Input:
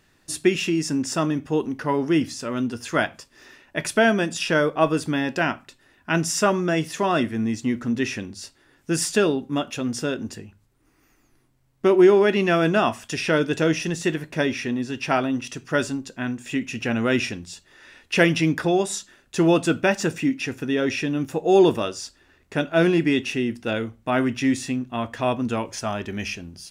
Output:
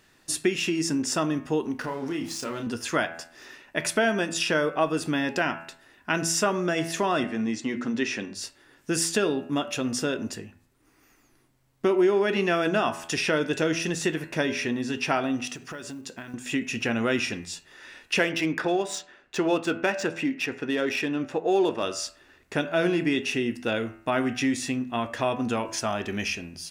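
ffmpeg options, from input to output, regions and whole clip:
ffmpeg -i in.wav -filter_complex "[0:a]asettb=1/sr,asplit=3[link_01][link_02][link_03];[link_01]atrim=end=1.804[link_04];[link_02]atrim=start=1.8:end=2.67,asetpts=PTS-STARTPTS,afade=type=in:duration=0.004:curve=qsin,afade=type=out:start_time=0.866:duration=0.004:curve=qsin,aeval=exprs='sgn(val(0))*max(abs(val(0))-0.00708,0)':channel_layout=same,acompressor=threshold=-29dB:ratio=4:attack=3.2:release=140:knee=1:detection=peak,asplit=2[link_05][link_06];[link_06]adelay=30,volume=-5.5dB[link_07];[link_05][link_07]amix=inputs=2:normalize=0,atrim=end_sample=38367[link_08];[link_03]atrim=start=2.666[link_09];[link_04][link_08]acrossfade=duration=0.004:curve1=hsin:curve2=qsin[link_10];[link_10][link_09]acrossfade=duration=0.004:curve1=qsin:curve2=hsin,asettb=1/sr,asplit=3[link_11][link_12][link_13];[link_11]atrim=end=7.244[link_14];[link_12]atrim=start=7.24:end=8.35,asetpts=PTS-STARTPTS,afade=type=in:duration=0.004:curve=qsin,afade=type=out:start_time=1.106:duration=0.004:curve=qsin,highpass=170,lowpass=7100,bandreject=frequency=60:width_type=h:width=6,bandreject=frequency=120:width_type=h:width=6,bandreject=frequency=180:width_type=h:width=6,bandreject=frequency=240:width_type=h:width=6,bandreject=frequency=300:width_type=h:width=6,bandreject=frequency=360:width_type=h:width=6,bandreject=frequency=420:width_type=h:width=6[link_15];[link_13]atrim=start=8.346[link_16];[link_14][link_15]acrossfade=duration=0.004:curve1=hsin:curve2=qsin[link_17];[link_17][link_16]acrossfade=duration=0.004:curve1=qsin:curve2=hsin,asettb=1/sr,asplit=3[link_18][link_19][link_20];[link_18]atrim=end=15.484[link_21];[link_19]atrim=start=15.48:end=16.34,asetpts=PTS-STARTPTS,afade=type=in:duration=0.004:curve=qsin,afade=type=out:start_time=0.856:duration=0.004:curve=qsin,highpass=62,acompressor=threshold=-34dB:ratio=16:attack=3.2:release=140:knee=1:detection=peak,acrusher=bits=8:mode=log:mix=0:aa=0.000001[link_22];[link_20]atrim=start=16.336[link_23];[link_21][link_22]acrossfade=duration=0.004:curve1=hsin:curve2=qsin[link_24];[link_24][link_23]acrossfade=duration=0.004:curve1=qsin:curve2=hsin,asettb=1/sr,asplit=3[link_25][link_26][link_27];[link_25]atrim=end=18.194[link_28];[link_26]atrim=start=18.19:end=21.83,asetpts=PTS-STARTPTS,afade=type=in:duration=0.004:curve=qsin,afade=type=out:start_time=3.636:duration=0.004:curve=qsin,bass=frequency=250:gain=-7,treble=frequency=4000:gain=-3,adynamicsmooth=sensitivity=5.5:basefreq=4500[link_29];[link_27]atrim=start=21.826[link_30];[link_28][link_29]acrossfade=duration=0.004:curve1=hsin:curve2=qsin[link_31];[link_31][link_30]acrossfade=duration=0.004:curve1=qsin:curve2=hsin,lowshelf=frequency=180:gain=-7,bandreject=frequency=83.04:width_type=h:width=4,bandreject=frequency=166.08:width_type=h:width=4,bandreject=frequency=249.12:width_type=h:width=4,bandreject=frequency=332.16:width_type=h:width=4,bandreject=frequency=415.2:width_type=h:width=4,bandreject=frequency=498.24:width_type=h:width=4,bandreject=frequency=581.28:width_type=h:width=4,bandreject=frequency=664.32:width_type=h:width=4,bandreject=frequency=747.36:width_type=h:width=4,bandreject=frequency=830.4:width_type=h:width=4,bandreject=frequency=913.44:width_type=h:width=4,bandreject=frequency=996.48:width_type=h:width=4,bandreject=frequency=1079.52:width_type=h:width=4,bandreject=frequency=1162.56:width_type=h:width=4,bandreject=frequency=1245.6:width_type=h:width=4,bandreject=frequency=1328.64:width_type=h:width=4,bandreject=frequency=1411.68:width_type=h:width=4,bandreject=frequency=1494.72:width_type=h:width=4,bandreject=frequency=1577.76:width_type=h:width=4,bandreject=frequency=1660.8:width_type=h:width=4,bandreject=frequency=1743.84:width_type=h:width=4,bandreject=frequency=1826.88:width_type=h:width=4,bandreject=frequency=1909.92:width_type=h:width=4,bandreject=frequency=1992.96:width_type=h:width=4,bandreject=frequency=2076:width_type=h:width=4,bandreject=frequency=2159.04:width_type=h:width=4,bandreject=frequency=2242.08:width_type=h:width=4,bandreject=frequency=2325.12:width_type=h:width=4,bandreject=frequency=2408.16:width_type=h:width=4,bandreject=frequency=2491.2:width_type=h:width=4,bandreject=frequency=2574.24:width_type=h:width=4,bandreject=frequency=2657.28:width_type=h:width=4,bandreject=frequency=2740.32:width_type=h:width=4,bandreject=frequency=2823.36:width_type=h:width=4,acompressor=threshold=-27dB:ratio=2,volume=2.5dB" out.wav

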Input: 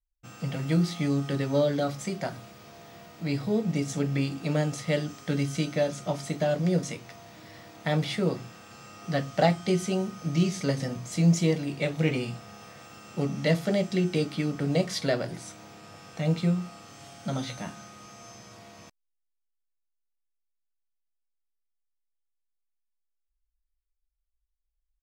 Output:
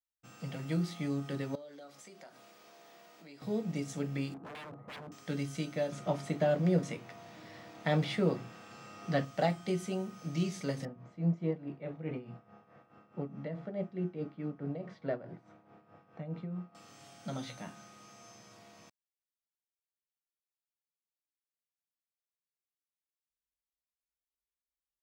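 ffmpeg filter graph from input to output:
ffmpeg -i in.wav -filter_complex "[0:a]asettb=1/sr,asplit=3[link_01][link_02][link_03];[link_01]atrim=end=1.554[link_04];[link_02]atrim=start=1.55:end=3.42,asetpts=PTS-STARTPTS,afade=type=in:duration=0.004:curve=qsin,afade=type=out:start_time=1.866:duration=0.004:curve=qsin,highpass=320,acompressor=threshold=-45dB:ratio=3:attack=3.2:release=140:knee=1:detection=peak[link_05];[link_03]atrim=start=3.416[link_06];[link_04][link_05]acrossfade=duration=0.004:curve1=hsin:curve2=qsin[link_07];[link_07][link_06]acrossfade=duration=0.004:curve1=qsin:curve2=hsin,asettb=1/sr,asplit=3[link_08][link_09][link_10];[link_08]atrim=end=4.344[link_11];[link_09]atrim=start=4.34:end=5.12,asetpts=PTS-STARTPTS,afade=type=in:duration=0.004:curve=qsin,afade=type=out:start_time=0.776:duration=0.004:curve=qsin,lowpass=frequency=1100:width=0.5412,lowpass=frequency=1100:width=1.3066,aeval=exprs='0.0224*(abs(mod(val(0)/0.0224+3,4)-2)-1)':channel_layout=same[link_12];[link_10]atrim=start=5.116[link_13];[link_11][link_12]acrossfade=duration=0.004:curve1=hsin:curve2=qsin[link_14];[link_14][link_13]acrossfade=duration=0.004:curve1=qsin:curve2=hsin,asettb=1/sr,asplit=3[link_15][link_16][link_17];[link_15]atrim=end=5.924[link_18];[link_16]atrim=start=5.92:end=9.25,asetpts=PTS-STARTPTS,afade=type=in:duration=0.004:curve=qsin,afade=type=out:start_time=3.326:duration=0.004:curve=qsin,highpass=46,highshelf=frequency=6000:gain=-9.5,acontrast=36[link_19];[link_17]atrim=start=9.246[link_20];[link_18][link_19]acrossfade=duration=0.004:curve1=hsin:curve2=qsin[link_21];[link_21][link_20]acrossfade=duration=0.004:curve1=qsin:curve2=hsin,asettb=1/sr,asplit=3[link_22][link_23][link_24];[link_22]atrim=end=10.854[link_25];[link_23]atrim=start=10.85:end=16.75,asetpts=PTS-STARTPTS,afade=type=in:duration=0.004:curve=qsin,afade=type=out:start_time=5.896:duration=0.004:curve=qsin,lowpass=1400,tremolo=f=4.7:d=0.7[link_26];[link_24]atrim=start=16.746[link_27];[link_25][link_26]acrossfade=duration=0.004:curve1=hsin:curve2=qsin[link_28];[link_28][link_27]acrossfade=duration=0.004:curve1=qsin:curve2=hsin,highpass=120,adynamicequalizer=threshold=0.00316:dfrequency=5200:dqfactor=0.93:tfrequency=5200:tqfactor=0.93:attack=5:release=100:ratio=0.375:range=2.5:mode=cutabove:tftype=bell,volume=-7.5dB" out.wav

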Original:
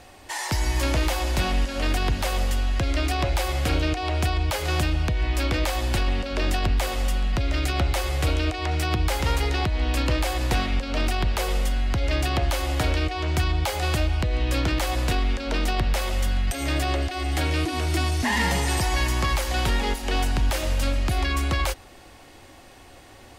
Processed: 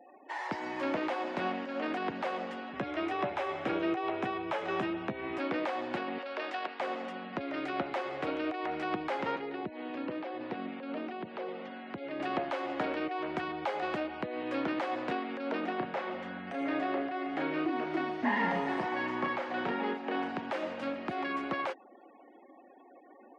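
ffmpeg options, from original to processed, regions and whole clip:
ffmpeg -i in.wav -filter_complex "[0:a]asettb=1/sr,asplit=3[link_01][link_02][link_03];[link_01]atrim=end=2.734[link_04];[link_02]atrim=start=2.73:end=5.38,asetpts=PTS-STARTPTS,afade=type=in:duration=0.004:curve=qsin,afade=type=out:start_time=2.646:duration=0.004:curve=qsin,bandreject=frequency=4500:width=8.6,afreqshift=23,asplit=2[link_05][link_06];[link_06]adelay=15,volume=-9dB[link_07];[link_05][link_07]amix=inputs=2:normalize=0,atrim=end_sample=116865[link_08];[link_03]atrim=start=5.376[link_09];[link_04][link_08]acrossfade=duration=0.004:curve1=hsin:curve2=qsin[link_10];[link_10][link_09]acrossfade=duration=0.004:curve1=qsin:curve2=hsin,asettb=1/sr,asplit=3[link_11][link_12][link_13];[link_11]atrim=end=6.184[link_14];[link_12]atrim=start=6.18:end=6.8,asetpts=PTS-STARTPTS,afade=type=in:duration=0.004:curve=qsin,afade=type=out:start_time=0.616:duration=0.004:curve=qsin,highpass=540,lowpass=5300,aemphasis=mode=production:type=50fm[link_15];[link_13]atrim=start=6.796[link_16];[link_14][link_15]acrossfade=duration=0.004:curve1=hsin:curve2=qsin[link_17];[link_17][link_16]acrossfade=duration=0.004:curve1=qsin:curve2=hsin,asettb=1/sr,asplit=3[link_18][link_19][link_20];[link_18]atrim=end=9.364[link_21];[link_19]atrim=start=9.36:end=12.2,asetpts=PTS-STARTPTS,afade=type=in:duration=0.004:curve=qsin,afade=type=out:start_time=2.836:duration=0.004:curve=qsin,lowpass=4400,acrossover=split=550|2400[link_22][link_23][link_24];[link_22]acompressor=threshold=-23dB:ratio=4[link_25];[link_23]acompressor=threshold=-41dB:ratio=4[link_26];[link_24]acompressor=threshold=-40dB:ratio=4[link_27];[link_25][link_26][link_27]amix=inputs=3:normalize=0[link_28];[link_20]atrim=start=12.196[link_29];[link_21][link_28]acrossfade=duration=0.004:curve1=hsin:curve2=qsin[link_30];[link_30][link_29]acrossfade=duration=0.004:curve1=qsin:curve2=hsin,asettb=1/sr,asplit=3[link_31][link_32][link_33];[link_31]atrim=end=15.604[link_34];[link_32]atrim=start=15.6:end=20.29,asetpts=PTS-STARTPTS,afade=type=in:duration=0.004:curve=qsin,afade=type=out:start_time=4.686:duration=0.004:curve=qsin,highshelf=frequency=4600:gain=-9.5,asplit=2[link_35][link_36];[link_36]adelay=33,volume=-5dB[link_37];[link_35][link_37]amix=inputs=2:normalize=0,atrim=end_sample=206829[link_38];[link_33]atrim=start=20.286[link_39];[link_34][link_38]acrossfade=duration=0.004:curve1=hsin:curve2=qsin[link_40];[link_40][link_39]acrossfade=duration=0.004:curve1=qsin:curve2=hsin,highpass=frequency=210:width=0.5412,highpass=frequency=210:width=1.3066,afftfilt=real='re*gte(hypot(re,im),0.00708)':imag='im*gte(hypot(re,im),0.00708)':win_size=1024:overlap=0.75,lowpass=1800,volume=-4dB" out.wav

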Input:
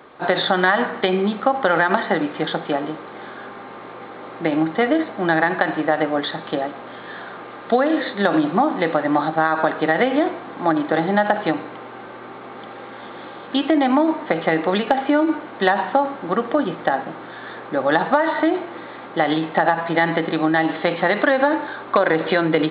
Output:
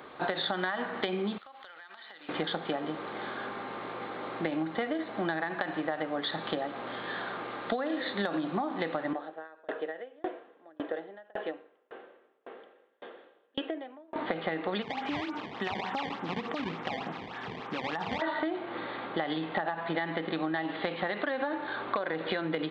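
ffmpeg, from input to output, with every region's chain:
ffmpeg -i in.wav -filter_complex "[0:a]asettb=1/sr,asplit=3[link_01][link_02][link_03];[link_01]atrim=end=1.384[link_04];[link_02]atrim=start=1.38:end=2.29,asetpts=PTS-STARTPTS,afade=type=in:duration=0.004:curve=qsin,afade=type=out:start_time=0.906:duration=0.004:curve=qsin,aderivative,acompressor=threshold=-43dB:ratio=12:attack=3.2:release=140:knee=1:detection=peak[link_05];[link_03]atrim=start=2.286[link_06];[link_04][link_05]acrossfade=duration=0.004:curve1=hsin:curve2=qsin[link_07];[link_07][link_06]acrossfade=duration=0.004:curve1=qsin:curve2=hsin,asettb=1/sr,asplit=3[link_08][link_09][link_10];[link_08]atrim=end=9.134[link_11];[link_09]atrim=start=9.13:end=14.16,asetpts=PTS-STARTPTS,afade=type=in:duration=0.004:curve=qsin,afade=type=out:start_time=5.026:duration=0.004:curve=qsin,highpass=440,equalizer=frequency=460:width_type=q:width=4:gain=7,equalizer=frequency=860:width_type=q:width=4:gain=-9,equalizer=frequency=1200:width_type=q:width=4:gain=-9,equalizer=frequency=2200:width_type=q:width=4:gain=-9,lowpass=frequency=2800:width=0.5412,lowpass=frequency=2800:width=1.3066,bandreject=frequency=1500:width=19,aeval=exprs='val(0)*pow(10,-36*if(lt(mod(1.8*n/s,1),2*abs(1.8)/1000),1-mod(1.8*n/s,1)/(2*abs(1.8)/1000),(mod(1.8*n/s,1)-2*abs(1.8)/1000)/(1-2*abs(1.8)/1000))/20)':channel_layout=same[link_12];[link_10]atrim=start=14.156[link_13];[link_11][link_12]acrossfade=duration=0.004:curve1=hsin:curve2=qsin[link_14];[link_14][link_13]acrossfade=duration=0.004:curve1=qsin:curve2=hsin,asettb=1/sr,asplit=3[link_15][link_16][link_17];[link_15]atrim=end=14.824[link_18];[link_16]atrim=start=14.82:end=18.22,asetpts=PTS-STARTPTS,afade=type=in:duration=0.004:curve=qsin,afade=type=out:start_time=3.396:duration=0.004:curve=qsin,acrusher=samples=19:mix=1:aa=0.000001:lfo=1:lforange=30.4:lforate=3.4,acompressor=threshold=-24dB:ratio=3:attack=3.2:release=140:knee=1:detection=peak,highpass=120,equalizer=frequency=330:width_type=q:width=4:gain=-7,equalizer=frequency=570:width_type=q:width=4:gain=-9,equalizer=frequency=1500:width_type=q:width=4:gain=-4,lowpass=frequency=3300:width=0.5412,lowpass=frequency=3300:width=1.3066[link_19];[link_17]atrim=start=18.216[link_20];[link_18][link_19]acrossfade=duration=0.004:curve1=hsin:curve2=qsin[link_21];[link_21][link_20]acrossfade=duration=0.004:curve1=qsin:curve2=hsin,highshelf=frequency=4000:gain=7.5,acompressor=threshold=-26dB:ratio=6,volume=-3dB" out.wav

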